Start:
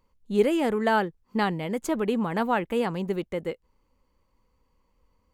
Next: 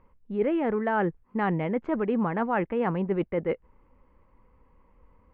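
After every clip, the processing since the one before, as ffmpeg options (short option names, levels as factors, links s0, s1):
-af "areverse,acompressor=threshold=0.0224:ratio=5,areverse,lowpass=f=2200:w=0.5412,lowpass=f=2200:w=1.3066,volume=2.82"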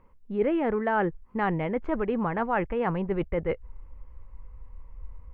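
-af "asubboost=boost=10.5:cutoff=76,volume=1.12"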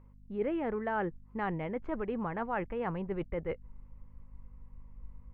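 -af "aeval=exprs='val(0)+0.00398*(sin(2*PI*50*n/s)+sin(2*PI*2*50*n/s)/2+sin(2*PI*3*50*n/s)/3+sin(2*PI*4*50*n/s)/4+sin(2*PI*5*50*n/s)/5)':c=same,volume=0.422"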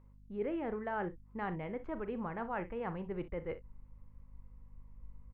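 -af "aecho=1:1:39|61:0.211|0.168,volume=0.596"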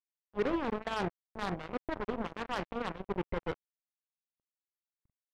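-filter_complex "[0:a]asplit=2[s0][s1];[s1]adynamicsmooth=sensitivity=1:basefreq=660,volume=0.891[s2];[s0][s2]amix=inputs=2:normalize=0,acrusher=bits=4:mix=0:aa=0.5"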